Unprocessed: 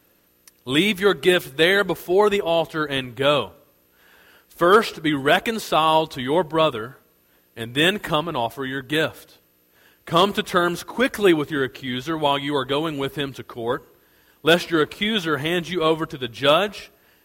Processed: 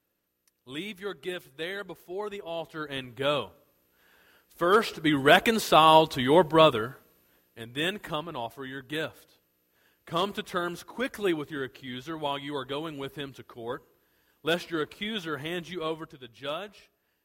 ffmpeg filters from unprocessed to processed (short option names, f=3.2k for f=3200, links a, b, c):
-af "afade=t=in:st=2.35:d=0.9:silence=0.334965,afade=t=in:st=4.66:d=0.81:silence=0.375837,afade=t=out:st=6.74:d=0.89:silence=0.281838,afade=t=out:st=15.7:d=0.53:silence=0.473151"